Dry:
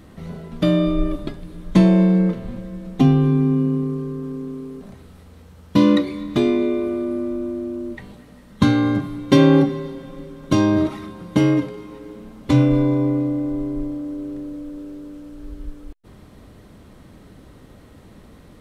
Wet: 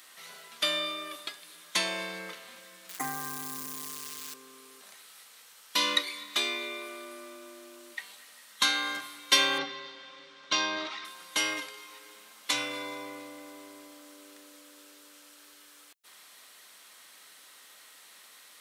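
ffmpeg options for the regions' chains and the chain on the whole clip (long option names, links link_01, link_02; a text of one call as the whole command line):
ffmpeg -i in.wav -filter_complex "[0:a]asettb=1/sr,asplit=3[link_01][link_02][link_03];[link_01]atrim=end=2.894[link_04];[link_02]atrim=start=2.89:end=4.34,asetpts=PTS-STARTPTS,afade=type=in:duration=0.004:curve=qsin,afade=type=out:start_time=1.446:duration=0.004:curve=qsin,asuperstop=centerf=3800:order=20:qfactor=0.91,aecho=1:1:6.5:0.65,atrim=end_sample=63945,acrusher=bits=8:dc=4:mix=0:aa=0.000001[link_05];[link_03]atrim=start=4.336[link_06];[link_04][link_05]acrossfade=duration=0.004:curve1=hsin:curve2=qsin[link_07];[link_07][link_06]acrossfade=duration=0.004:curve1=qsin:curve2=hsin,asettb=1/sr,asplit=3[link_08][link_09][link_10];[link_08]atrim=end=9.584[link_11];[link_09]atrim=start=9.58:end=11.05,asetpts=PTS-STARTPTS,afade=type=in:duration=0.004:curve=qsin,afade=type=out:start_time=1.466:duration=0.004:curve=qsin,lowpass=frequency=5100:width=0.5412,lowpass=frequency=5100:width=1.3066,lowshelf=frequency=170:gain=6.5[link_12];[link_10]atrim=start=11.046[link_13];[link_11][link_12]acrossfade=duration=0.004:curve1=hsin:curve2=qsin[link_14];[link_14][link_13]acrossfade=duration=0.004:curve1=qsin:curve2=hsin,highpass=1400,highshelf=frequency=3300:gain=11" out.wav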